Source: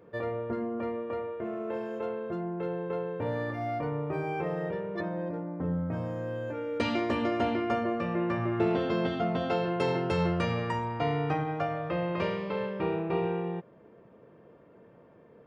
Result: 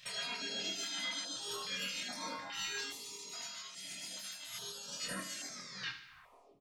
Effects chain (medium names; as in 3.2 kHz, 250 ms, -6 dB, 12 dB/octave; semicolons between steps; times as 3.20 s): tape stop on the ending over 2.65 s; time-frequency box 11.82–12.19 s, 830–3500 Hz -29 dB; hum notches 50/100/150/200/250 Hz; spectral gate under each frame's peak -20 dB weak; dynamic bell 2.3 kHz, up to +6 dB, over -59 dBFS, Q 1; compressor with a negative ratio -53 dBFS, ratio -1; flange 1.9 Hz, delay 6.8 ms, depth 4 ms, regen +77%; speed mistake 33 rpm record played at 78 rpm; doubling 25 ms -3.5 dB; feedback delay 74 ms, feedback 49%, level -10.5 dB; reverberation, pre-delay 4 ms, DRR 5 dB; step-sequenced notch 2.4 Hz 320–2900 Hz; trim +11.5 dB